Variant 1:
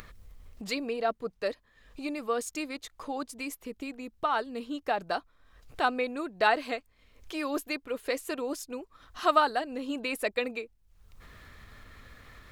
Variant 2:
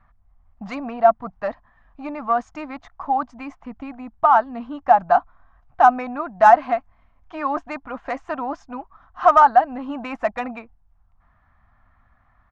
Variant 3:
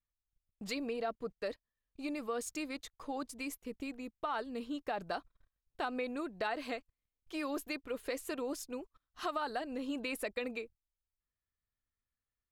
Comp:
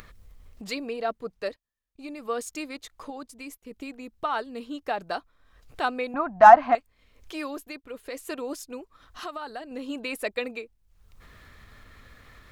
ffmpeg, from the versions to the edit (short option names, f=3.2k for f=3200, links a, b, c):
-filter_complex "[2:a]asplit=4[a][b][c][d];[0:a]asplit=6[e][f][g][h][i][j];[e]atrim=end=1.492[k];[a]atrim=start=1.488:end=2.252[l];[f]atrim=start=2.248:end=3.102[m];[b]atrim=start=3.098:end=3.712[n];[g]atrim=start=3.708:end=6.142[o];[1:a]atrim=start=6.138:end=6.752[p];[h]atrim=start=6.748:end=7.58[q];[c]atrim=start=7.42:end=8.26[r];[i]atrim=start=8.1:end=9.242[s];[d]atrim=start=9.238:end=9.712[t];[j]atrim=start=9.708[u];[k][l]acrossfade=d=0.004:c1=hsin:c2=hsin[v];[v][m]acrossfade=d=0.004:c1=hsin:c2=hsin[w];[w][n]acrossfade=d=0.004:c1=hsin:c2=hsin[x];[x][o]acrossfade=d=0.004:c1=hsin:c2=hsin[y];[y][p]acrossfade=d=0.004:c1=hsin:c2=hsin[z];[z][q]acrossfade=d=0.004:c1=hsin:c2=hsin[aa];[aa][r]acrossfade=d=0.16:c1=tri:c2=tri[ab];[ab][s]acrossfade=d=0.16:c1=tri:c2=tri[ac];[ac][t]acrossfade=d=0.004:c1=hsin:c2=hsin[ad];[ad][u]acrossfade=d=0.004:c1=hsin:c2=hsin"